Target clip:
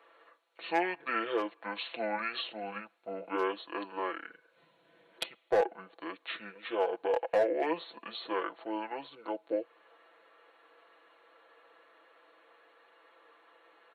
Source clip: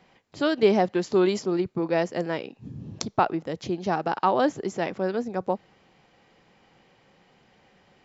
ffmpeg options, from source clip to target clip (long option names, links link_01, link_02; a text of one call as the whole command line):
ffmpeg -i in.wav -filter_complex "[0:a]highpass=frequency=810:width=0.5412,highpass=frequency=810:width=1.3066,asplit=2[link_01][link_02];[link_02]acompressor=threshold=-36dB:ratio=10,volume=-2dB[link_03];[link_01][link_03]amix=inputs=2:normalize=0,volume=17dB,asoftclip=hard,volume=-17dB,asetrate=25442,aresample=44100,aecho=1:1:6:0.72,volume=-4.5dB" out.wav